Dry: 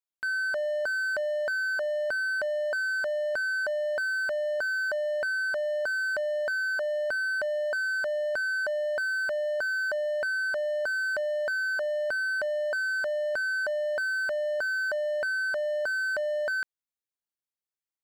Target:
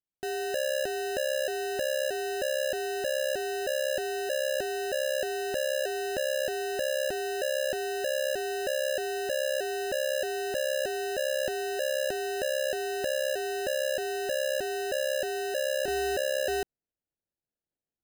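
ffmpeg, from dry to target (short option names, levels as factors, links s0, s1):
-af "asetnsamples=n=441:p=0,asendcmd='15.88 lowpass f 6300',lowpass=1500,acrusher=samples=39:mix=1:aa=0.000001"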